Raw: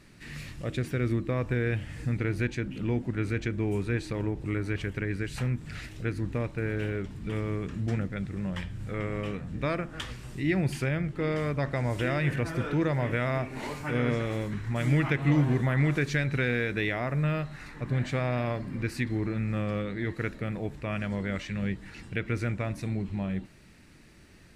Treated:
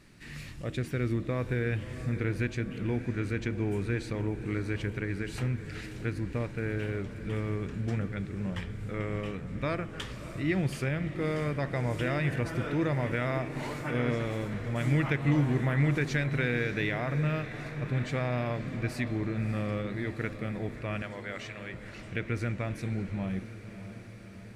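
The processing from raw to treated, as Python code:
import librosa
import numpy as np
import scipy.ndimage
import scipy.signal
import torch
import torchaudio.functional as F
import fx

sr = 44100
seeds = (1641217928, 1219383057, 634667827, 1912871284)

y = fx.highpass(x, sr, hz=510.0, slope=12, at=(21.02, 21.74))
y = fx.echo_diffused(y, sr, ms=615, feedback_pct=65, wet_db=-12.5)
y = F.gain(torch.from_numpy(y), -2.0).numpy()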